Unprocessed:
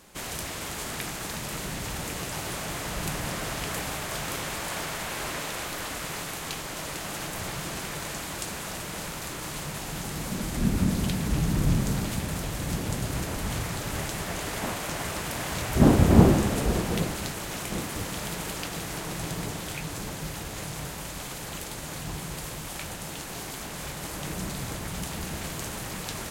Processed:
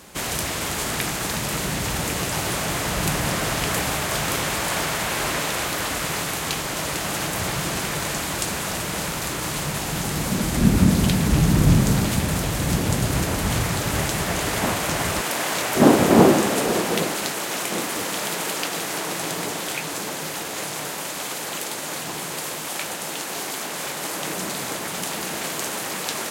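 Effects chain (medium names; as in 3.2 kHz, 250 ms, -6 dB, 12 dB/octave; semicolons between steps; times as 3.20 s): high-pass 47 Hz 12 dB/octave, from 15.21 s 290 Hz; trim +8.5 dB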